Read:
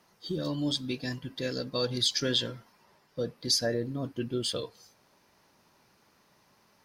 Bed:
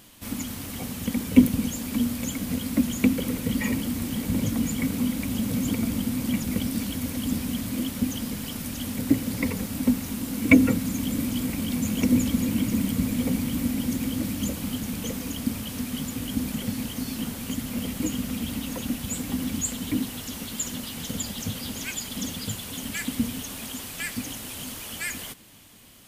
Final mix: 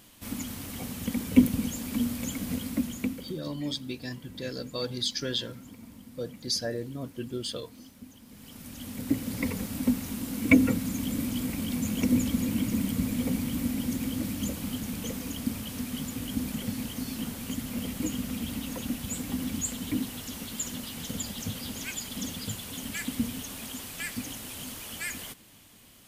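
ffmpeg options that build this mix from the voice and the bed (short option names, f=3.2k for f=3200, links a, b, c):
-filter_complex "[0:a]adelay=3000,volume=-3dB[a];[1:a]volume=14.5dB,afade=t=out:st=2.52:d=0.88:silence=0.125893,afade=t=in:st=8.25:d=1.21:silence=0.125893[b];[a][b]amix=inputs=2:normalize=0"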